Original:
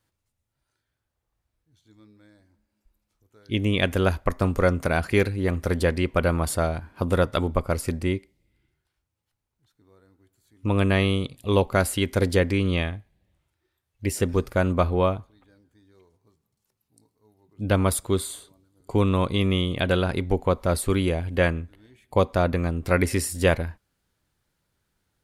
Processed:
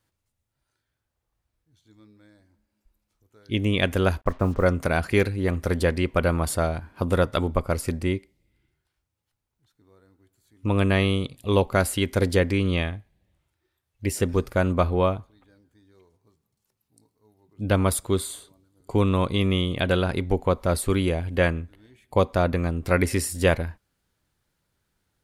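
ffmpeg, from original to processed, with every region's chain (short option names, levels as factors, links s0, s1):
-filter_complex "[0:a]asettb=1/sr,asplit=3[s0][s1][s2];[s0]atrim=end=4.214[s3];[s1]atrim=start=4.21:end=4.66,asetpts=PTS-STARTPTS,afade=t=in:d=0.004:c=qsin,afade=t=out:st=0.446:d=0.004:c=qsin,lowpass=1600,acrusher=bits=7:mix=0:aa=0.5[s4];[s2]atrim=start=4.656[s5];[s3][s4]acrossfade=d=0.004:c1=hsin:c2=qsin[s6];[s6][s5]acrossfade=d=0.004:c1=qsin:c2=hsin"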